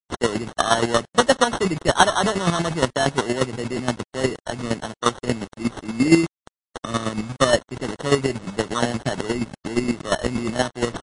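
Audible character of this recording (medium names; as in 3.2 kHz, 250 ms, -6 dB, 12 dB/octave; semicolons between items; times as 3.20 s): a quantiser's noise floor 6-bit, dither none; chopped level 8.5 Hz, depth 65%, duty 25%; aliases and images of a low sample rate 2.4 kHz, jitter 0%; MP3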